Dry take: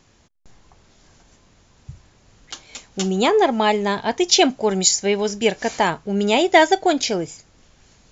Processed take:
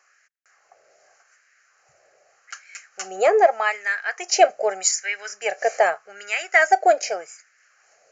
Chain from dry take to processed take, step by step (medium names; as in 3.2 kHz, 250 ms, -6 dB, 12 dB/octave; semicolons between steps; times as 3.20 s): LFO high-pass sine 0.83 Hz 570–1700 Hz; static phaser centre 960 Hz, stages 6; resampled via 16 kHz